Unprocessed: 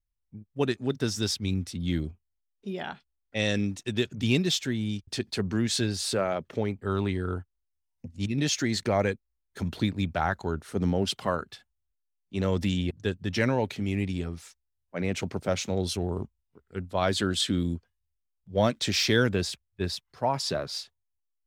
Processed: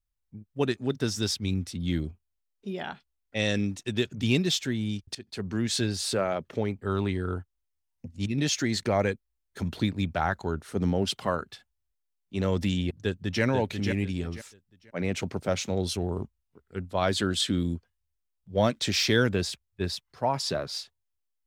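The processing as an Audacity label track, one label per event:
5.150000	5.920000	fade in equal-power, from −18 dB
12.950000	13.430000	delay throw 490 ms, feedback 25%, level −5.5 dB

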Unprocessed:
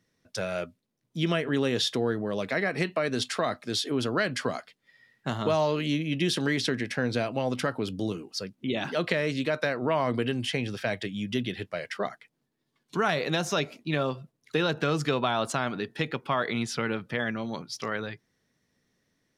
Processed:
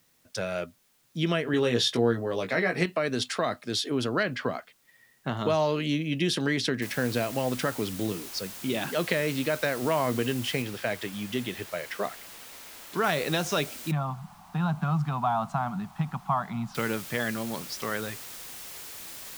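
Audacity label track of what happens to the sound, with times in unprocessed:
1.520000	2.860000	double-tracking delay 17 ms −4 dB
4.230000	5.370000	low-pass filter 3,300 Hz
6.820000	6.820000	noise floor change −67 dB −42 dB
10.620000	13.040000	bass and treble bass −4 dB, treble −5 dB
13.910000	16.750000	drawn EQ curve 110 Hz 0 dB, 190 Hz +9 dB, 290 Hz −14 dB, 490 Hz −26 dB, 740 Hz +6 dB, 1,200 Hz +1 dB, 1,800 Hz −13 dB, 13,000 Hz −21 dB

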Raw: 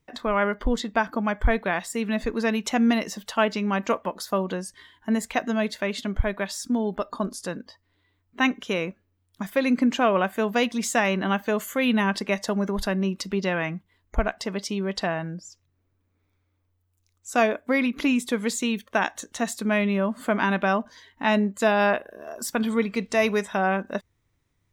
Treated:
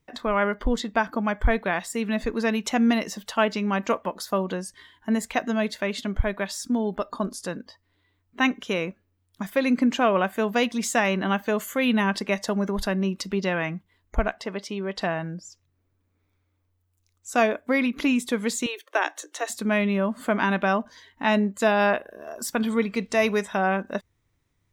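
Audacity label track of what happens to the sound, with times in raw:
14.370000	14.990000	bass and treble bass −6 dB, treble −8 dB
18.660000	19.500000	Chebyshev high-pass filter 300 Hz, order 8

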